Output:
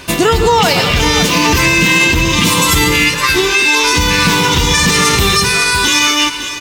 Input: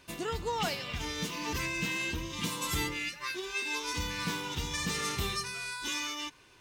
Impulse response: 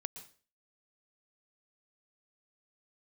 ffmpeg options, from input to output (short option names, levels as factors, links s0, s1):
-filter_complex "[0:a]aecho=1:1:232|557:0.141|0.2,asplit=2[s0][s1];[1:a]atrim=start_sample=2205[s2];[s1][s2]afir=irnorm=-1:irlink=0,volume=2.82[s3];[s0][s3]amix=inputs=2:normalize=0,alimiter=level_in=7.08:limit=0.891:release=50:level=0:latency=1,volume=0.891"